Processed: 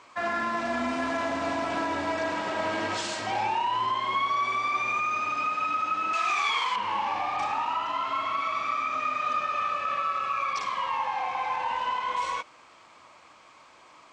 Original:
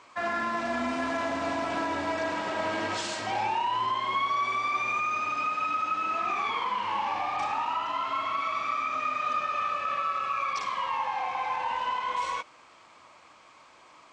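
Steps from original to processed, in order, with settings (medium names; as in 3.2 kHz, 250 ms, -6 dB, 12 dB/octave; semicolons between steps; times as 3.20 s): 6.13–6.76 s: tilt EQ +4.5 dB/octave; trim +1 dB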